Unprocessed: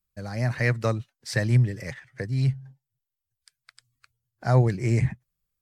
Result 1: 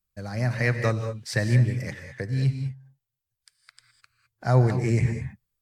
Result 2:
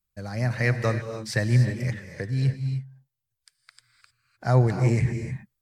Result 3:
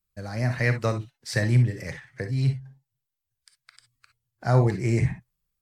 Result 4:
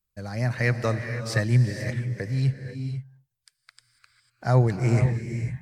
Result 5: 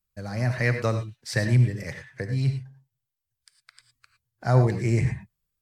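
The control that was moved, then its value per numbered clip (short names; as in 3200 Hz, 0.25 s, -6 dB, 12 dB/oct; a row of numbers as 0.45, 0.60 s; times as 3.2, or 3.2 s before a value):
non-linear reverb, gate: 230, 330, 80, 520, 130 ms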